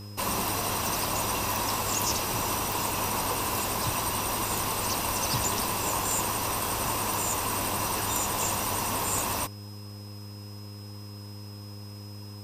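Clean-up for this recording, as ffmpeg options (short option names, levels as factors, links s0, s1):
-af "adeclick=t=4,bandreject=f=102.5:t=h:w=4,bandreject=f=205:t=h:w=4,bandreject=f=307.5:t=h:w=4,bandreject=f=410:t=h:w=4,bandreject=f=512.5:t=h:w=4,bandreject=f=5100:w=30"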